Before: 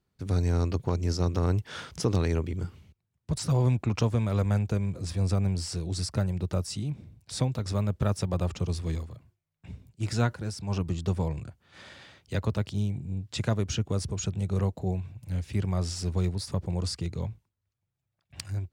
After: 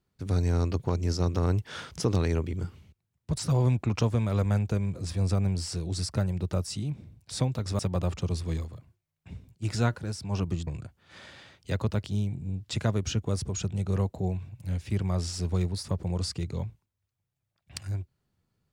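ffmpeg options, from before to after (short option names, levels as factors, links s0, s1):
-filter_complex "[0:a]asplit=3[s0][s1][s2];[s0]atrim=end=7.792[s3];[s1]atrim=start=8.168:end=11.052[s4];[s2]atrim=start=11.298[s5];[s3][s4]acrossfade=d=0.004:c1=hsin:c2=hsin[s6];[s6][s5]acrossfade=d=0.004:c1=hsin:c2=hsin"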